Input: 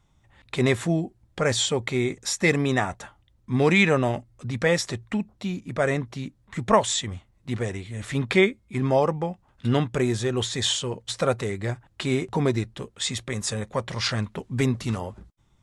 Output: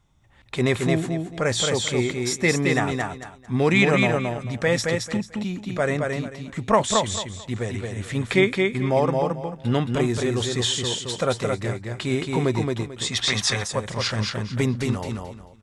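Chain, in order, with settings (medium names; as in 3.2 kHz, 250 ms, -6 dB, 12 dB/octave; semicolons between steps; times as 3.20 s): feedback delay 221 ms, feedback 24%, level -3.5 dB; time-frequency box 13.12–13.67 s, 640–6400 Hz +9 dB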